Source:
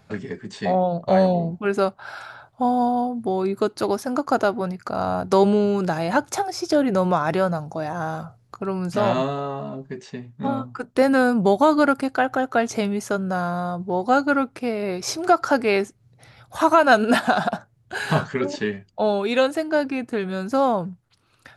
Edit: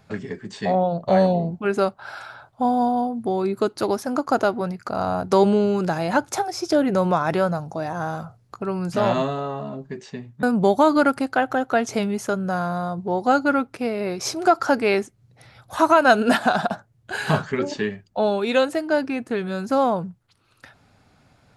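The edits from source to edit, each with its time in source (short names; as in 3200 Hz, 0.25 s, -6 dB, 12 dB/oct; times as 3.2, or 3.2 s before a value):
10.43–11.25 cut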